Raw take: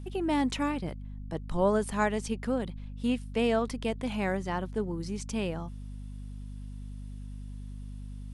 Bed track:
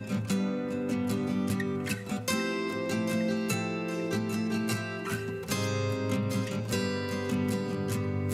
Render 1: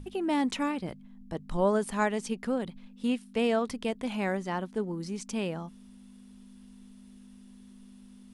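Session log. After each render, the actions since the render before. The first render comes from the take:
mains-hum notches 50/100/150 Hz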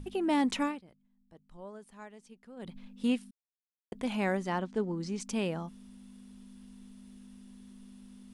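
0:00.62–0:02.76: duck −21 dB, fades 0.20 s
0:03.31–0:03.92: silence
0:04.59–0:05.20: low-pass filter 7,900 Hz 24 dB per octave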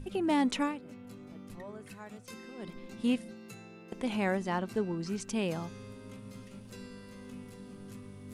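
mix in bed track −18.5 dB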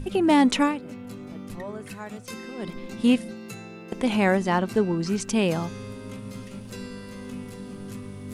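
level +9.5 dB

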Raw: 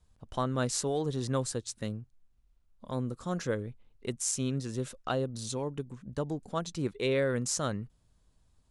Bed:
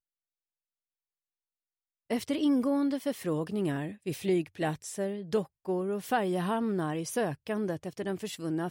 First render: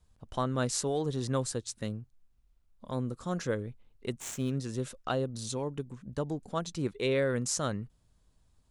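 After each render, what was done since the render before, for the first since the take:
0:04.20–0:04.60: running median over 9 samples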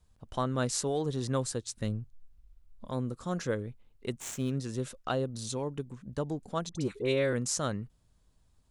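0:01.77–0:02.87: low-shelf EQ 92 Hz +12 dB
0:06.69–0:07.33: all-pass dispersion highs, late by 62 ms, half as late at 1,200 Hz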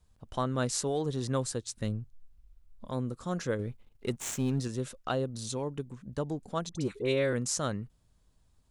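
0:03.59–0:04.68: leveller curve on the samples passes 1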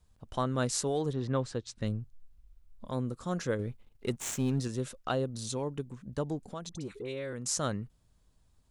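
0:01.12–0:01.85: low-pass filter 2,400 Hz → 5,900 Hz
0:06.45–0:07.46: downward compressor 3 to 1, threshold −37 dBFS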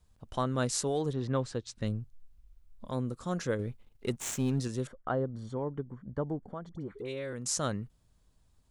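0:04.87–0:06.99: Savitzky-Golay smoothing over 41 samples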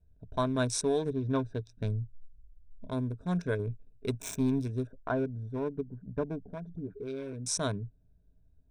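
adaptive Wiener filter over 41 samples
EQ curve with evenly spaced ripples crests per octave 1.6, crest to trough 11 dB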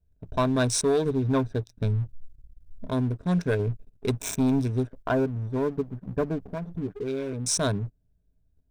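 leveller curve on the samples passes 2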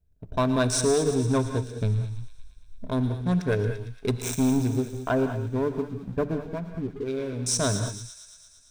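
delay with a high-pass on its return 114 ms, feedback 73%, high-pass 2,800 Hz, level −9.5 dB
reverb whose tail is shaped and stops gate 230 ms rising, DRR 8 dB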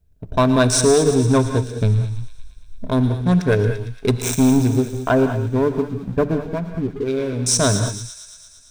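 level +8 dB

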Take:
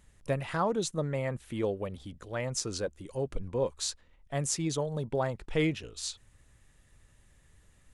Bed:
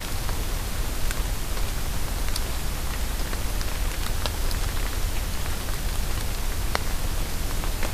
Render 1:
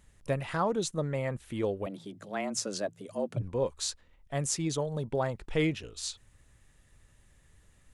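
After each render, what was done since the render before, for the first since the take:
0:01.86–0:03.42: frequency shifter +100 Hz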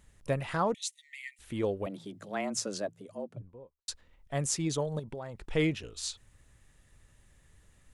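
0:00.74–0:01.39: linear-phase brick-wall high-pass 1,800 Hz
0:02.51–0:03.88: fade out and dull
0:04.99–0:05.41: downward compressor 4 to 1, threshold −38 dBFS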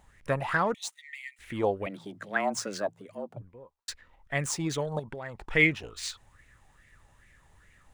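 running median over 3 samples
auto-filter bell 2.4 Hz 770–2,200 Hz +16 dB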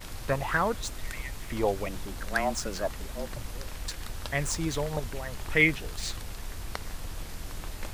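mix in bed −11 dB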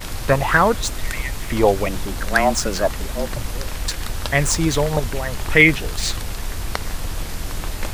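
level +11.5 dB
brickwall limiter −1 dBFS, peak gain reduction 2.5 dB

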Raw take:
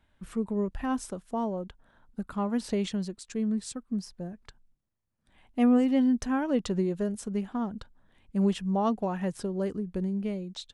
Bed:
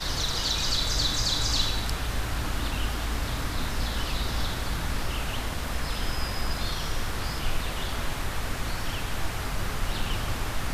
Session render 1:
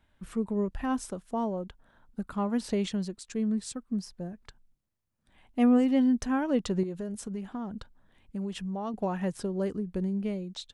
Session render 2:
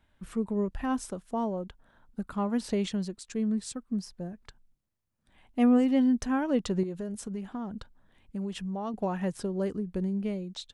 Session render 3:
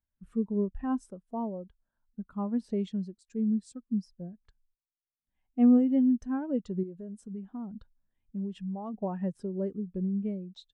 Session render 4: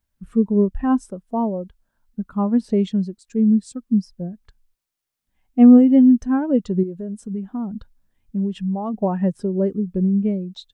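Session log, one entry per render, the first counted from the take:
0:06.83–0:08.94: downward compressor 4 to 1, threshold −32 dBFS
no processing that can be heard
speech leveller within 4 dB 2 s; every bin expanded away from the loudest bin 1.5 to 1
level +12 dB; brickwall limiter −3 dBFS, peak gain reduction 1 dB

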